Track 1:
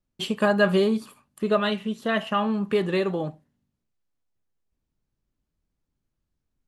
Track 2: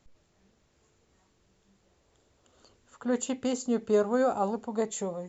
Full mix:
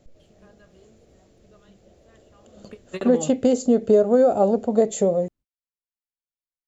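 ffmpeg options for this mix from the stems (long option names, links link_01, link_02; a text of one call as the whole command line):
ffmpeg -i stem1.wav -i stem2.wav -filter_complex "[0:a]volume=-5.5dB[link_01];[1:a]lowshelf=frequency=780:width_type=q:width=3:gain=6.5,acompressor=threshold=-19dB:ratio=4,volume=2.5dB,asplit=2[link_02][link_03];[link_03]apad=whole_len=294288[link_04];[link_01][link_04]sidechaingate=range=-33dB:threshold=-49dB:ratio=16:detection=peak[link_05];[link_05][link_02]amix=inputs=2:normalize=0,dynaudnorm=framelen=130:gausssize=3:maxgain=3dB" out.wav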